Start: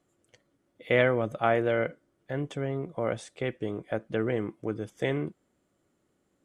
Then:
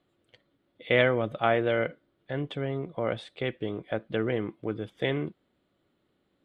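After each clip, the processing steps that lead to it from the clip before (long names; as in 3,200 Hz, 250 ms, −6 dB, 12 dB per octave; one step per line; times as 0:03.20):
high shelf with overshoot 4,900 Hz −9 dB, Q 3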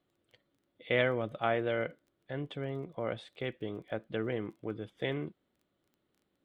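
surface crackle 12 per second −47 dBFS
level −6 dB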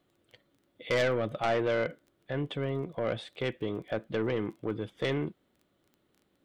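soft clipping −28.5 dBFS, distortion −10 dB
level +6.5 dB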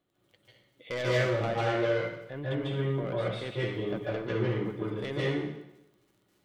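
convolution reverb RT60 0.90 s, pre-delay 140 ms, DRR −7.5 dB
level −7 dB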